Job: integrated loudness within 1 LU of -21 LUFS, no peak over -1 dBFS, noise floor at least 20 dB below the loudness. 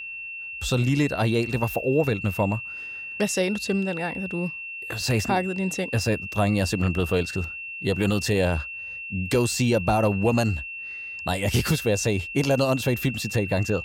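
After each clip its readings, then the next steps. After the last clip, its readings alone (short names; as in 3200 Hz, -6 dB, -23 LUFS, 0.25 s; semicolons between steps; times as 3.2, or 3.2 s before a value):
steady tone 2700 Hz; tone level -33 dBFS; loudness -25.0 LUFS; peak -10.5 dBFS; loudness target -21.0 LUFS
-> notch 2700 Hz, Q 30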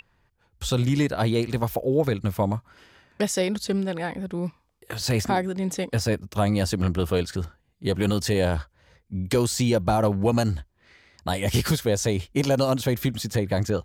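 steady tone none; loudness -25.0 LUFS; peak -11.0 dBFS; loudness target -21.0 LUFS
-> gain +4 dB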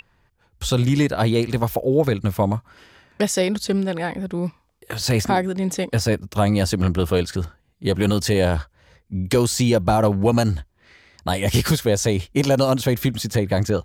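loudness -21.0 LUFS; peak -7.0 dBFS; noise floor -63 dBFS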